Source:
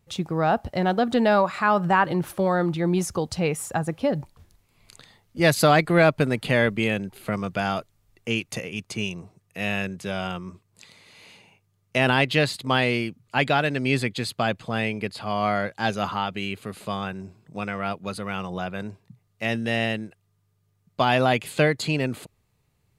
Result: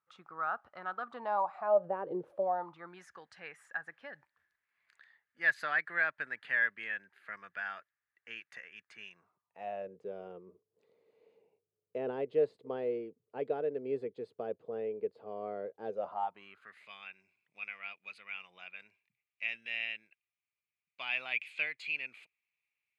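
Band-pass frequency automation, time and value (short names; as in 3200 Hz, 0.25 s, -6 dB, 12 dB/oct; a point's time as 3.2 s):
band-pass, Q 7.9
1.01 s 1300 Hz
2.16 s 410 Hz
3.01 s 1700 Hz
9.14 s 1700 Hz
9.97 s 450 Hz
15.89 s 450 Hz
16.91 s 2400 Hz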